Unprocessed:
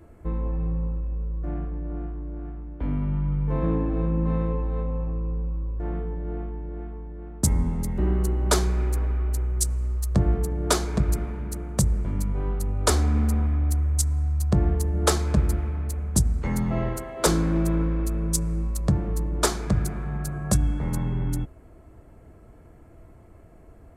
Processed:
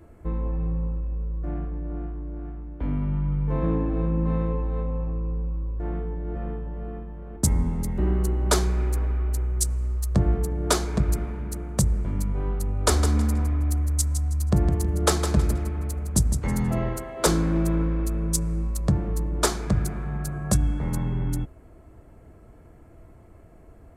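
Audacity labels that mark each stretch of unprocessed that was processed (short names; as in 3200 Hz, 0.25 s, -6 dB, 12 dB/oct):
5.810000	6.820000	echo throw 0.54 s, feedback 15%, level -2 dB
12.710000	16.770000	feedback echo 0.16 s, feedback 28%, level -9 dB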